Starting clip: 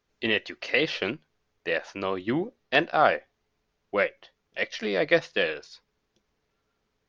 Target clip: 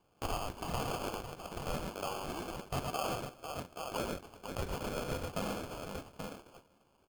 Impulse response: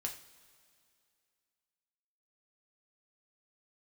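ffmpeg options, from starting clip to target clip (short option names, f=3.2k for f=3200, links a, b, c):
-filter_complex "[0:a]asettb=1/sr,asplit=3[a][b][c];[a]atrim=end=1.834[d];[b]atrim=start=1.83:end=3.06,asetpts=PTS-STARTPTS,afade=t=in:d=0.004:c=qsin,afade=t=out:st=1.226:d=0.004:c=qsin,aemphasis=mode=reproduction:type=50fm[e];[c]atrim=start=3.056[f];[d][e]acrossfade=d=0.004:c1=hsin:c2=qsin[g];[g][f]acrossfade=d=0.004:c1=qsin:c2=hsin,alimiter=limit=-11.5dB:level=0:latency=1:release=111,aecho=1:1:41|79|87|111|498|829:0.188|0.133|0.126|0.398|0.126|0.168,asplit=2[h][i];[1:a]atrim=start_sample=2205[j];[i][j]afir=irnorm=-1:irlink=0,volume=-13dB[k];[h][k]amix=inputs=2:normalize=0,acrusher=bits=2:mode=log:mix=0:aa=0.000001,asoftclip=type=tanh:threshold=-20dB,highpass=860,acrusher=samples=23:mix=1:aa=0.000001,acompressor=threshold=-50dB:ratio=2,volume=6.5dB"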